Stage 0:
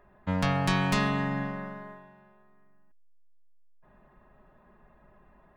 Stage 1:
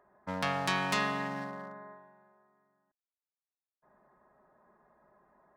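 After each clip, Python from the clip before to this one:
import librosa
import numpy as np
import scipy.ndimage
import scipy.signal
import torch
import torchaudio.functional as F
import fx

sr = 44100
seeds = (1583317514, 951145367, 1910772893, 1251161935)

y = fx.wiener(x, sr, points=15)
y = fx.highpass(y, sr, hz=600.0, slope=6)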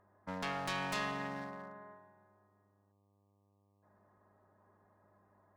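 y = fx.dmg_buzz(x, sr, base_hz=100.0, harmonics=12, level_db=-69.0, tilt_db=-5, odd_only=False)
y = fx.tube_stage(y, sr, drive_db=27.0, bias=0.45)
y = y * librosa.db_to_amplitude(-3.0)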